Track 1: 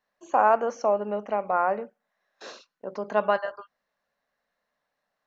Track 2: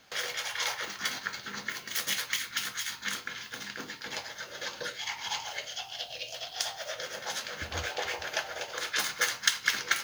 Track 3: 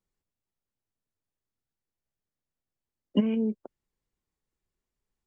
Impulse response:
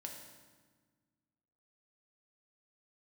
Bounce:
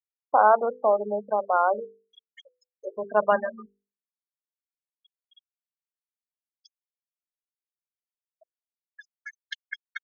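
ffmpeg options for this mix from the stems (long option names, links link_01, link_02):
-filter_complex "[0:a]lowshelf=frequency=110:gain=-11.5,volume=2.5dB,asplit=2[link_01][link_02];[1:a]aemphasis=mode=production:type=75kf,adelay=50,volume=-8.5dB[link_03];[2:a]adelay=150,volume=-15dB[link_04];[link_02]apad=whole_len=444592[link_05];[link_03][link_05]sidechaincompress=threshold=-32dB:ratio=8:attack=33:release=335[link_06];[link_01][link_06][link_04]amix=inputs=3:normalize=0,afftfilt=real='re*gte(hypot(re,im),0.1)':imag='im*gte(hypot(re,im),0.1)':win_size=1024:overlap=0.75,lowpass=frequency=3100:width=0.5412,lowpass=frequency=3100:width=1.3066,bandreject=frequency=50:width_type=h:width=6,bandreject=frequency=100:width_type=h:width=6,bandreject=frequency=150:width_type=h:width=6,bandreject=frequency=200:width_type=h:width=6,bandreject=frequency=250:width_type=h:width=6,bandreject=frequency=300:width_type=h:width=6,bandreject=frequency=350:width_type=h:width=6,bandreject=frequency=400:width_type=h:width=6,bandreject=frequency=450:width_type=h:width=6,bandreject=frequency=500:width_type=h:width=6"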